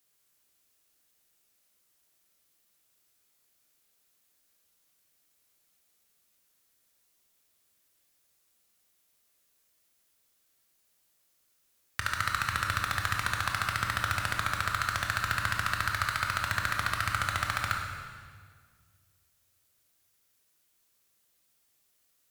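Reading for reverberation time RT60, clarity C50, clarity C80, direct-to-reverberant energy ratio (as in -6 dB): 1.8 s, 3.0 dB, 4.5 dB, 1.0 dB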